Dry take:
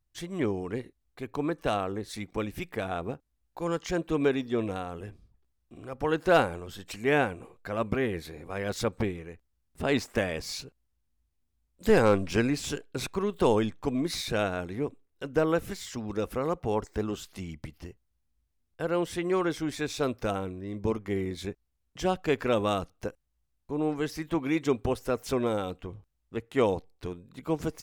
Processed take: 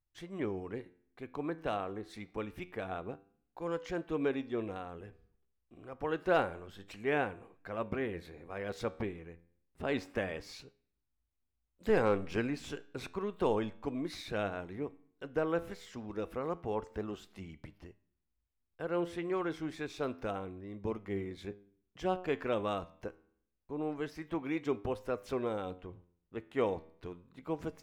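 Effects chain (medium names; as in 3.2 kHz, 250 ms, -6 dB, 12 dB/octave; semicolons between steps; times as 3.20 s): tone controls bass -3 dB, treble -10 dB; on a send at -22.5 dB: reverberation RT60 0.70 s, pre-delay 3 ms; on the sum: flange 0.28 Hz, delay 9.6 ms, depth 3 ms, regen +87%; trim -2 dB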